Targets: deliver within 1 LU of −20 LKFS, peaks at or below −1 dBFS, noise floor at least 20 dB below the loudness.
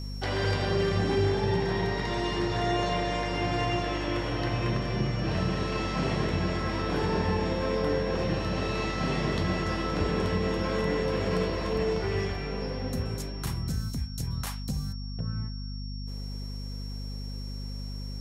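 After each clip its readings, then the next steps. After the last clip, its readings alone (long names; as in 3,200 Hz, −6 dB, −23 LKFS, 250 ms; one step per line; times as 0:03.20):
mains hum 50 Hz; hum harmonics up to 250 Hz; level of the hum −33 dBFS; interfering tone 5,500 Hz; level of the tone −45 dBFS; integrated loudness −30.0 LKFS; sample peak −14.0 dBFS; target loudness −20.0 LKFS
→ hum removal 50 Hz, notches 5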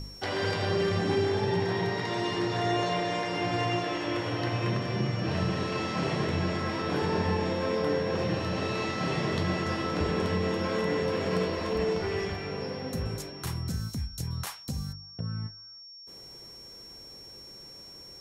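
mains hum none found; interfering tone 5,500 Hz; level of the tone −45 dBFS
→ notch filter 5,500 Hz, Q 30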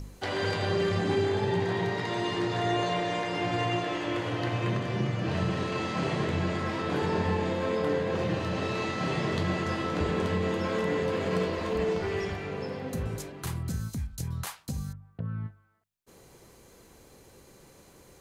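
interfering tone none found; integrated loudness −30.0 LKFS; sample peak −16.5 dBFS; target loudness −20.0 LKFS
→ level +10 dB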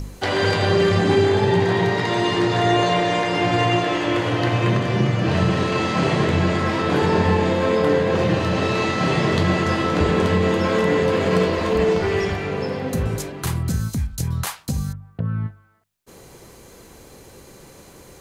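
integrated loudness −20.0 LKFS; sample peak −6.5 dBFS; background noise floor −46 dBFS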